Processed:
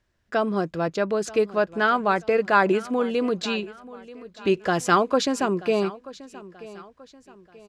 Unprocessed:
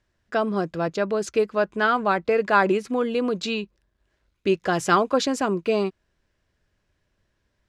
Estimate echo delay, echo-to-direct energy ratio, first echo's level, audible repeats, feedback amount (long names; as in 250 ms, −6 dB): 933 ms, −18.0 dB, −18.5 dB, 3, 40%